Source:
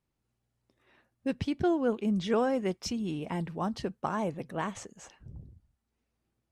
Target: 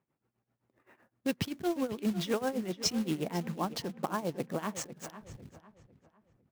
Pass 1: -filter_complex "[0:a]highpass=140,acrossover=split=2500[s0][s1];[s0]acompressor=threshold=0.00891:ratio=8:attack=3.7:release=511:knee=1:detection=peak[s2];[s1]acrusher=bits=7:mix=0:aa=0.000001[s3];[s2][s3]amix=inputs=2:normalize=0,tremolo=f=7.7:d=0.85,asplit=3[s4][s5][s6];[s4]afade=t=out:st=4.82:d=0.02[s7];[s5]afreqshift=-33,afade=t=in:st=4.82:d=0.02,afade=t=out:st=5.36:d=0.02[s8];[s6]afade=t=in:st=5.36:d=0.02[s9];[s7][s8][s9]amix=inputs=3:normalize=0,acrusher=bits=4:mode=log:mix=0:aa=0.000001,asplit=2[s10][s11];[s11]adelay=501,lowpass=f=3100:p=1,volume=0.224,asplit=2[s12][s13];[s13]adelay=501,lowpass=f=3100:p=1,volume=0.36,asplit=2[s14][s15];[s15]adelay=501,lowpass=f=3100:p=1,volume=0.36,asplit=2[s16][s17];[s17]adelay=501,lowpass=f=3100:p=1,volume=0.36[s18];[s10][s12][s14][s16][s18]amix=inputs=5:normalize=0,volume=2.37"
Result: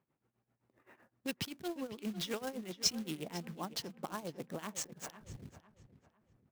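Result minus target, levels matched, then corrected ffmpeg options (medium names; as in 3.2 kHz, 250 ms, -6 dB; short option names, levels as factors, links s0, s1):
compression: peak gain reduction +9 dB
-filter_complex "[0:a]highpass=140,acrossover=split=2500[s0][s1];[s0]acompressor=threshold=0.0282:ratio=8:attack=3.7:release=511:knee=1:detection=peak[s2];[s1]acrusher=bits=7:mix=0:aa=0.000001[s3];[s2][s3]amix=inputs=2:normalize=0,tremolo=f=7.7:d=0.85,asplit=3[s4][s5][s6];[s4]afade=t=out:st=4.82:d=0.02[s7];[s5]afreqshift=-33,afade=t=in:st=4.82:d=0.02,afade=t=out:st=5.36:d=0.02[s8];[s6]afade=t=in:st=5.36:d=0.02[s9];[s7][s8][s9]amix=inputs=3:normalize=0,acrusher=bits=4:mode=log:mix=0:aa=0.000001,asplit=2[s10][s11];[s11]adelay=501,lowpass=f=3100:p=1,volume=0.224,asplit=2[s12][s13];[s13]adelay=501,lowpass=f=3100:p=1,volume=0.36,asplit=2[s14][s15];[s15]adelay=501,lowpass=f=3100:p=1,volume=0.36,asplit=2[s16][s17];[s17]adelay=501,lowpass=f=3100:p=1,volume=0.36[s18];[s10][s12][s14][s16][s18]amix=inputs=5:normalize=0,volume=2.37"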